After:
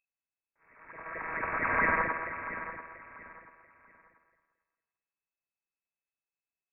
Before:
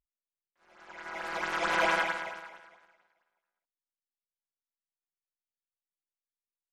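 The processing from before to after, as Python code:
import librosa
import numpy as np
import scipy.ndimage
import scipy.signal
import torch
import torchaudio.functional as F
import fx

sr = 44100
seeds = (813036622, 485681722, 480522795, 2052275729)

y = fx.echo_feedback(x, sr, ms=687, feedback_pct=28, wet_db=-12.0)
y = fx.freq_invert(y, sr, carrier_hz=2600)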